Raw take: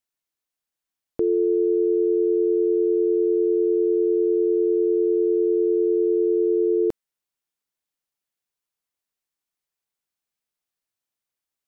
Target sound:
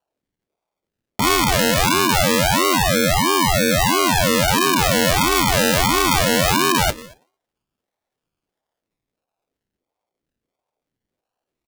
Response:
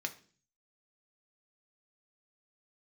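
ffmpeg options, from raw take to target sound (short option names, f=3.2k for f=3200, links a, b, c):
-filter_complex "[0:a]equalizer=f=130:w=0.82:g=7.5,aeval=exprs='0.266*(cos(1*acos(clip(val(0)/0.266,-1,1)))-cos(1*PI/2))+0.00841*(cos(8*acos(clip(val(0)/0.266,-1,1)))-cos(8*PI/2))':c=same,aecho=1:1:116|232:0.0794|0.0254,asplit=2[a][b];[1:a]atrim=start_sample=2205,afade=t=out:st=0.41:d=0.01,atrim=end_sample=18522[c];[b][c]afir=irnorm=-1:irlink=0,volume=3dB[d];[a][d]amix=inputs=2:normalize=0,acrusher=samples=31:mix=1:aa=0.000001:lfo=1:lforange=18.6:lforate=0.22,equalizer=f=590:w=0.61:g=-10.5,aeval=exprs='val(0)*sin(2*PI*430*n/s+430*0.75/1.5*sin(2*PI*1.5*n/s))':c=same,volume=4dB"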